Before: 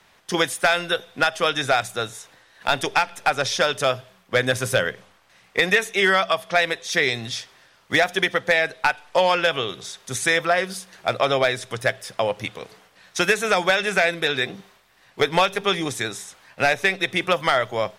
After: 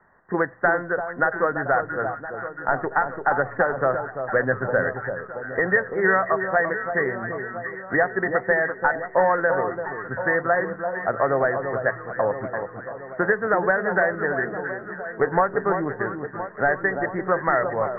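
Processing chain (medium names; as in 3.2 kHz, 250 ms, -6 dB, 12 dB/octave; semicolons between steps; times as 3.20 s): Chebyshev low-pass 1.9 kHz, order 8; hum notches 60/120 Hz; on a send: echo whose repeats swap between lows and highs 339 ms, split 1.2 kHz, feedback 75%, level -7 dB; 3.31–3.95 s: on the sum: three bands compressed up and down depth 70%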